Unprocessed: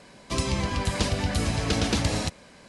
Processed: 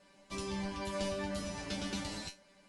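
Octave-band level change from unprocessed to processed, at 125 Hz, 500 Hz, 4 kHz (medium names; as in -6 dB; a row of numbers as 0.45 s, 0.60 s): -18.0 dB, -8.5 dB, -12.0 dB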